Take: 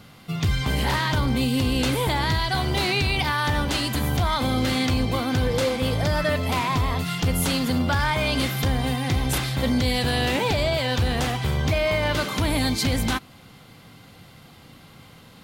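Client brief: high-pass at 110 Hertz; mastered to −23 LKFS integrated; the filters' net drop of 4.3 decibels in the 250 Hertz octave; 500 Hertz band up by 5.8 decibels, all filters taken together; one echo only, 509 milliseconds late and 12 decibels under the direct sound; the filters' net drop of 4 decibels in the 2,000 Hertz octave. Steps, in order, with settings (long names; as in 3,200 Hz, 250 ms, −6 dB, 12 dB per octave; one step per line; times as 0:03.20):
high-pass filter 110 Hz
parametric band 250 Hz −7 dB
parametric band 500 Hz +8.5 dB
parametric band 2,000 Hz −5.5 dB
single-tap delay 509 ms −12 dB
level +0.5 dB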